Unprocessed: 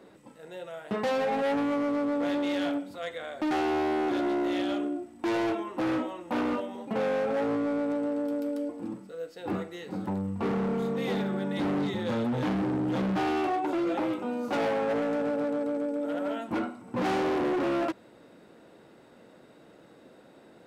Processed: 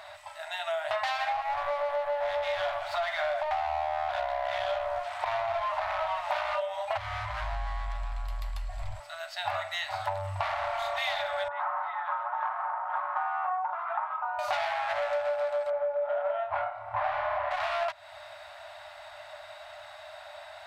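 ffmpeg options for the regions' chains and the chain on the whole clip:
ffmpeg -i in.wav -filter_complex "[0:a]asettb=1/sr,asplit=3[link_01][link_02][link_03];[link_01]atrim=end=1.324[link_04];[link_02]atrim=start=1.32:end=6.31,asetpts=PTS-STARTPTS,afade=type=in:duration=0.004:curve=qsin,afade=type=out:start_time=4.986:duration=0.004:curve=qsin,acrusher=bits=8:mix=0:aa=0.5,asplit=2[link_05][link_06];[link_06]highpass=frequency=720:poles=1,volume=22dB,asoftclip=type=tanh:threshold=-24dB[link_07];[link_05][link_07]amix=inputs=2:normalize=0,lowpass=frequency=1000:poles=1,volume=-6dB[link_08];[link_03]atrim=start=6.306[link_09];[link_04][link_08]acrossfade=duration=0.004:curve1=hsin:curve2=qsin[link_10];[link_10][link_09]acrossfade=duration=0.004:curve1=qsin:curve2=hsin,asettb=1/sr,asplit=3[link_11][link_12][link_13];[link_11]atrim=end=6.974[link_14];[link_12]atrim=start=6.97:end=9,asetpts=PTS-STARTPTS,afade=type=in:duration=0.004:curve=qsin,afade=type=out:start_time=2.026:duration=0.004:curve=qsin,acompressor=threshold=-34dB:ratio=10:attack=3.2:release=140:knee=1:detection=peak,afreqshift=-330[link_15];[link_13]atrim=start=8.996[link_16];[link_14][link_15]acrossfade=duration=0.004:curve1=hsin:curve2=qsin[link_17];[link_17][link_16]acrossfade=duration=0.004:curve1=qsin:curve2=hsin,asettb=1/sr,asplit=3[link_18][link_19][link_20];[link_18]atrim=end=11.484[link_21];[link_19]atrim=start=11.48:end=14.39,asetpts=PTS-STARTPTS,afade=type=in:duration=0.004:curve=qsin,afade=type=out:start_time=2.906:duration=0.004:curve=qsin,asuperpass=centerf=1100:order=4:qfactor=2,aecho=1:1:5.5:0.48,atrim=end_sample=128331[link_22];[link_20]atrim=start=14.386[link_23];[link_21][link_22]acrossfade=duration=0.004:curve1=hsin:curve2=qsin[link_24];[link_24][link_23]acrossfade=duration=0.004:curve1=qsin:curve2=hsin,asettb=1/sr,asplit=3[link_25][link_26][link_27];[link_25]atrim=end=15.704[link_28];[link_26]atrim=start=15.7:end=17.51,asetpts=PTS-STARTPTS,afade=type=in:duration=0.004:curve=qsin,afade=type=out:start_time=1.806:duration=0.004:curve=qsin,lowpass=1500,asplit=2[link_29][link_30];[link_30]adelay=28,volume=-2dB[link_31];[link_29][link_31]amix=inputs=2:normalize=0,atrim=end_sample=79821[link_32];[link_27]atrim=start=17.506[link_33];[link_28][link_32]acrossfade=duration=0.004:curve1=hsin:curve2=qsin[link_34];[link_34][link_33]acrossfade=duration=0.004:curve1=qsin:curve2=hsin,afftfilt=real='re*(1-between(b*sr/4096,110,580))':imag='im*(1-between(b*sr/4096,110,580))':win_size=4096:overlap=0.75,equalizer=frequency=125:width_type=o:width=1:gain=-4,equalizer=frequency=500:width_type=o:width=1:gain=10,equalizer=frequency=1000:width_type=o:width=1:gain=3,equalizer=frequency=2000:width_type=o:width=1:gain=6,equalizer=frequency=4000:width_type=o:width=1:gain=8,acompressor=threshold=-35dB:ratio=6,volume=7dB" out.wav

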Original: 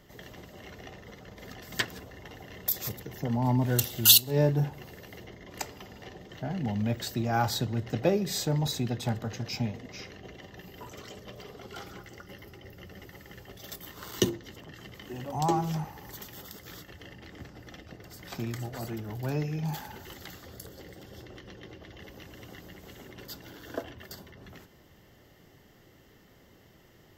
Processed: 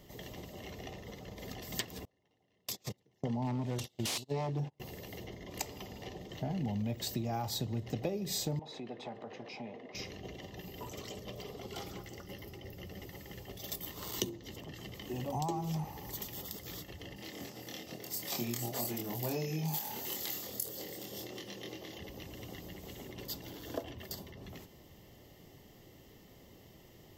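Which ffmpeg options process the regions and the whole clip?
ffmpeg -i in.wav -filter_complex "[0:a]asettb=1/sr,asplit=3[link_01][link_02][link_03];[link_01]atrim=end=2.054[link_04];[link_02]atrim=start=2.05:end=4.8,asetpts=PTS-STARTPTS,afade=type=in:duration=0.004:curve=qsin,afade=type=out:start_time=2.746:duration=0.004:curve=qsin,agate=range=-29dB:threshold=-34dB:ratio=16:release=100:detection=peak,aeval=exprs='0.1*(abs(mod(val(0)/0.1+3,4)-2)-1)':channel_layout=same,highpass=110,lowpass=6600[link_05];[link_03]atrim=start=4.796[link_06];[link_04][link_05]acrossfade=duration=0.004:curve1=hsin:curve2=qsin[link_07];[link_07][link_06]acrossfade=duration=0.004:curve1=qsin:curve2=hsin,asettb=1/sr,asplit=3[link_08][link_09][link_10];[link_08]atrim=end=8.594[link_11];[link_09]atrim=start=8.59:end=9.95,asetpts=PTS-STARTPTS,afade=type=in:duration=0.004:curve=qsin,afade=type=out:start_time=1.356:duration=0.004:curve=qsin,highpass=370,lowpass=2100,acompressor=threshold=-42dB:ratio=2.5:attack=3.2:release=140:knee=1:detection=peak[link_12];[link_10]atrim=start=9.946[link_13];[link_11][link_12]acrossfade=duration=0.004:curve1=hsin:curve2=qsin[link_14];[link_14][link_13]acrossfade=duration=0.004:curve1=qsin:curve2=hsin,asettb=1/sr,asplit=3[link_15][link_16][link_17];[link_15]atrim=end=17.164[link_18];[link_16]atrim=start=17.16:end=21.99,asetpts=PTS-STARTPTS,afade=type=in:duration=0.004:curve=qsin,afade=type=out:start_time=4.826:duration=0.004:curve=qsin,highpass=190,highshelf=frequency=5100:gain=10.5,asplit=2[link_19][link_20];[link_20]adelay=25,volume=-2dB[link_21];[link_19][link_21]amix=inputs=2:normalize=0,atrim=end_sample=213003[link_22];[link_17]atrim=start=21.986[link_23];[link_18][link_22]acrossfade=duration=0.004:curve1=hsin:curve2=qsin[link_24];[link_24][link_23]acrossfade=duration=0.004:curve1=qsin:curve2=hsin,highshelf=frequency=10000:gain=3.5,acompressor=threshold=-33dB:ratio=6,equalizer=frequency=1500:width=2.9:gain=-12.5,volume=1dB" out.wav

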